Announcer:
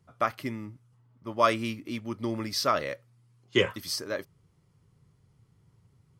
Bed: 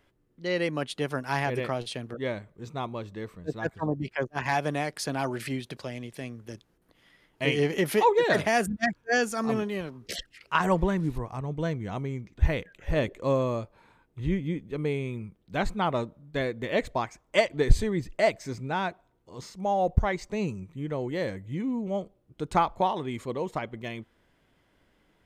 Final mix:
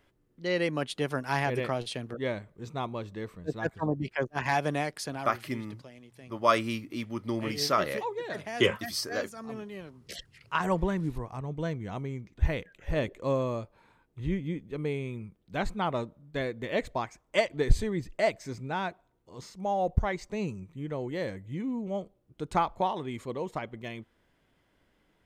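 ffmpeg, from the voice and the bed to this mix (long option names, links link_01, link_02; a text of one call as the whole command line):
ffmpeg -i stem1.wav -i stem2.wav -filter_complex "[0:a]adelay=5050,volume=-0.5dB[link_01];[1:a]volume=9.5dB,afade=type=out:start_time=4.8:duration=0.55:silence=0.237137,afade=type=in:start_time=9.45:duration=1.39:silence=0.316228[link_02];[link_01][link_02]amix=inputs=2:normalize=0" out.wav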